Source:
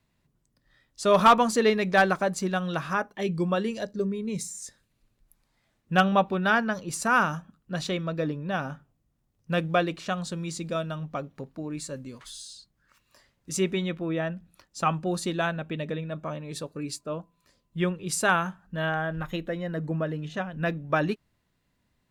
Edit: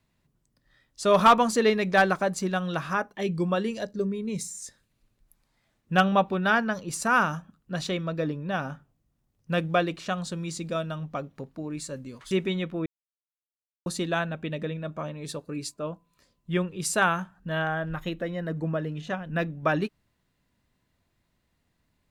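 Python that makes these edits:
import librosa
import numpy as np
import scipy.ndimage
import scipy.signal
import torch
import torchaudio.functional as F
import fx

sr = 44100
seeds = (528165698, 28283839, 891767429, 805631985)

y = fx.edit(x, sr, fx.cut(start_s=12.31, length_s=1.27),
    fx.silence(start_s=14.13, length_s=1.0), tone=tone)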